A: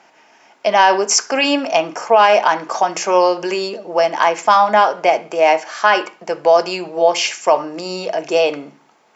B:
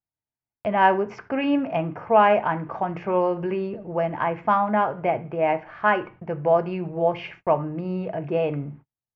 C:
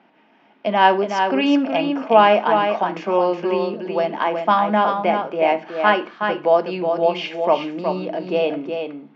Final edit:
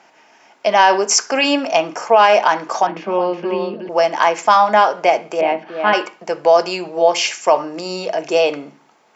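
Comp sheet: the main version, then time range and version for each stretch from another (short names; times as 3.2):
A
2.87–3.89 from C
5.41–5.93 from C
not used: B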